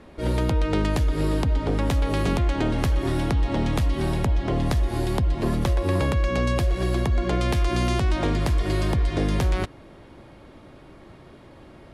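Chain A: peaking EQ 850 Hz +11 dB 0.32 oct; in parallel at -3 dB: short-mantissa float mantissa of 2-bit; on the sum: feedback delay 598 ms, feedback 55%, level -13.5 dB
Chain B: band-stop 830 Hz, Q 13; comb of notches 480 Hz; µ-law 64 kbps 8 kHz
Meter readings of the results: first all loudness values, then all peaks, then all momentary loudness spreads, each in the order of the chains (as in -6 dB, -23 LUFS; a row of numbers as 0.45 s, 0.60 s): -18.5 LUFS, -25.5 LUFS; -1.5 dBFS, -12.0 dBFS; 13 LU, 2 LU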